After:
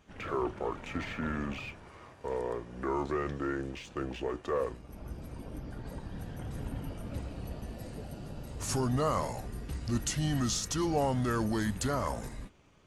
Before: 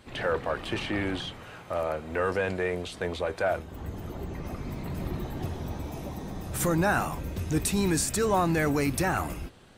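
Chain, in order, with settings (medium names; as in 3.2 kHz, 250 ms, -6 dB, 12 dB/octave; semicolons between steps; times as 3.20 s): tape speed -24%; in parallel at -5 dB: crossover distortion -46 dBFS; on the sum: band-stop 2 kHz, Q 29; trim -8.5 dB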